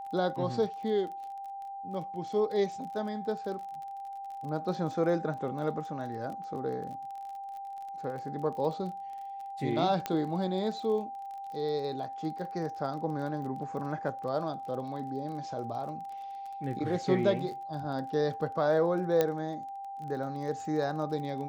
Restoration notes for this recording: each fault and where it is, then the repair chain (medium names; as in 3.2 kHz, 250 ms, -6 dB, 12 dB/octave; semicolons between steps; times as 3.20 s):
crackle 31 per s -40 dBFS
whine 790 Hz -38 dBFS
10.06 s: pop -16 dBFS
19.21 s: pop -13 dBFS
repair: de-click; band-stop 790 Hz, Q 30